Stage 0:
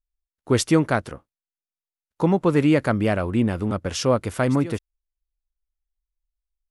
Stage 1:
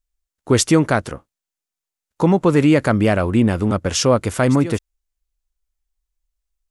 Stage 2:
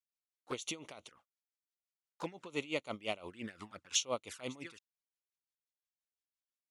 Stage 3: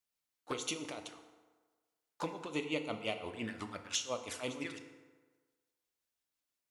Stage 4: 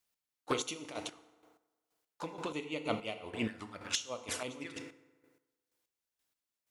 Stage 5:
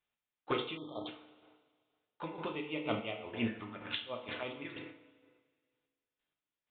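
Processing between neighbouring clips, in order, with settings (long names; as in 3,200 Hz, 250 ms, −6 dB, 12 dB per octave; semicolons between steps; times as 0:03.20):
parametric band 7,100 Hz +4.5 dB 0.67 octaves; in parallel at 0 dB: brickwall limiter −13.5 dBFS, peak gain reduction 7.5 dB
resonant band-pass 3,400 Hz, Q 0.72; flanger swept by the level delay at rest 4.5 ms, full sweep at −26 dBFS; tremolo with a sine in dB 5.8 Hz, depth 19 dB; level −4 dB
downward compressor 4 to 1, threshold −40 dBFS, peak gain reduction 11.5 dB; feedback delay network reverb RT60 1.4 s, low-frequency decay 0.85×, high-frequency decay 0.6×, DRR 6 dB; level +5.5 dB
square-wave tremolo 2.1 Hz, depth 65%, duty 30%; level +6 dB
downsampling to 8,000 Hz; coupled-rooms reverb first 0.36 s, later 1.9 s, from −18 dB, DRR 3.5 dB; time-frequency box erased 0:00.77–0:01.07, 1,300–3,100 Hz; level −1.5 dB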